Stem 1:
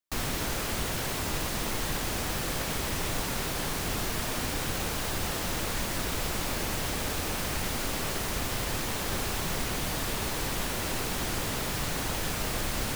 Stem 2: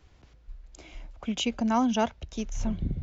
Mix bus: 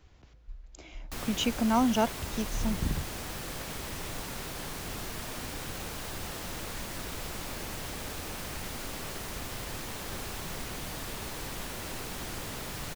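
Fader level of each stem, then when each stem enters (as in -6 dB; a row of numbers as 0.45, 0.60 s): -7.0, -0.5 dB; 1.00, 0.00 s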